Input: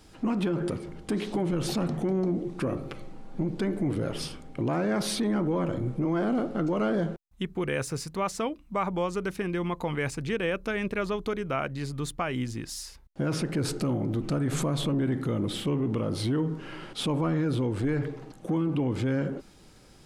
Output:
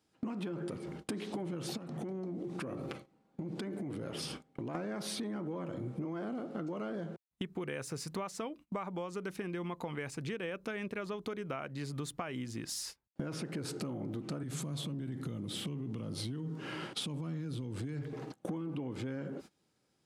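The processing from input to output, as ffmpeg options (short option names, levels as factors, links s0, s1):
-filter_complex "[0:a]asettb=1/sr,asplit=3[s0][s1][s2];[s0]atrim=end=1.774[s3];[s1]atrim=start=1.77:end=4.75,asetpts=PTS-STARTPTS,afade=t=in:d=0.004:c=qsin,afade=t=out:st=2.976:d=0.004:c=qsin,acompressor=threshold=0.0158:ratio=6:attack=3.2:release=140:knee=1:detection=peak[s4];[s2]atrim=start=4.746[s5];[s3][s4]acrossfade=d=0.004:c1=hsin:c2=qsin[s6];[s6][s5]acrossfade=d=0.004:c1=qsin:c2=hsin,asettb=1/sr,asplit=3[s7][s8][s9];[s7]atrim=end=14.434[s10];[s8]atrim=start=14.43:end=18.13,asetpts=PTS-STARTPTS,afade=t=in:d=0.004:c=qsin,afade=t=out:st=3.696:d=0.004:c=qsin,acrossover=split=220|3000[s11][s12][s13];[s12]acompressor=threshold=0.00891:ratio=4:attack=3.2:release=140:knee=2.83:detection=peak[s14];[s11][s14][s13]amix=inputs=3:normalize=0[s15];[s9]atrim=start=18.126[s16];[s10][s15]acrossfade=d=0.004:c1=hsin:c2=qsin[s17];[s17][s16]acrossfade=d=0.004:c1=qsin:c2=hsin,highpass=120,agate=range=0.0631:threshold=0.00631:ratio=16:detection=peak,acompressor=threshold=0.0112:ratio=12,volume=1.5"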